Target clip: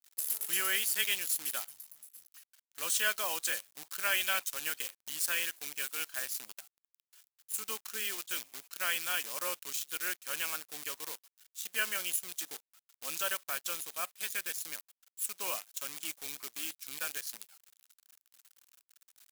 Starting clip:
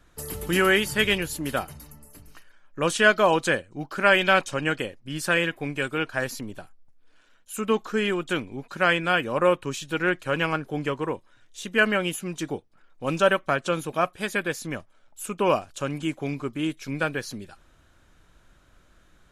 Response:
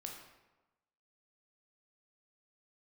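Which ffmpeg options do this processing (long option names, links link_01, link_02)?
-af "acrusher=bits=6:dc=4:mix=0:aa=0.000001,aderivative"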